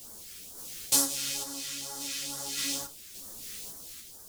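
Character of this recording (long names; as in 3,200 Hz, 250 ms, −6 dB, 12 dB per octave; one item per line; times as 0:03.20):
a quantiser's noise floor 8 bits, dither triangular
phaser sweep stages 2, 2.2 Hz, lowest notch 780–2,400 Hz
sample-and-hold tremolo
a shimmering, thickened sound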